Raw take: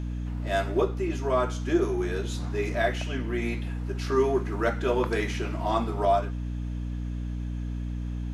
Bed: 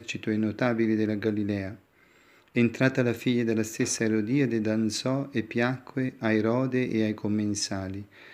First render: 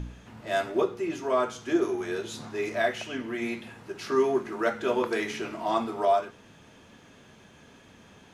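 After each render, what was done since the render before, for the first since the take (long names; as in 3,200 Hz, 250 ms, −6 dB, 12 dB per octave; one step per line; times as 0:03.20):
hum removal 60 Hz, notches 8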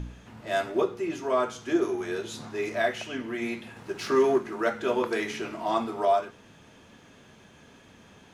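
0:03.76–0:04.38: leveller curve on the samples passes 1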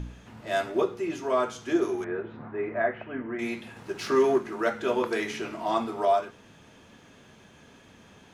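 0:02.04–0:03.39: low-pass filter 1,900 Hz 24 dB per octave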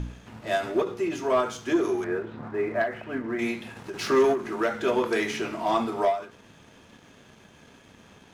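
leveller curve on the samples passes 1
every ending faded ahead of time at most 140 dB per second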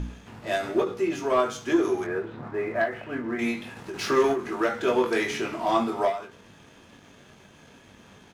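double-tracking delay 21 ms −6.5 dB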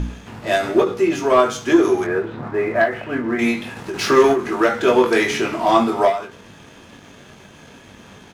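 level +8.5 dB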